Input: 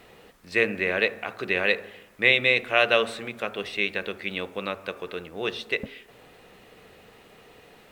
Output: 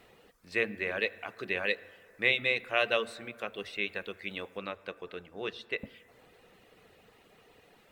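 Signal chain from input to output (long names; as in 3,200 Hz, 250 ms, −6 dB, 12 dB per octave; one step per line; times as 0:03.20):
reverb reduction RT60 0.6 s
0:04.57–0:05.78: high-shelf EQ 6,600 Hz −9 dB
convolution reverb RT60 2.6 s, pre-delay 5 ms, DRR 17 dB
level −7 dB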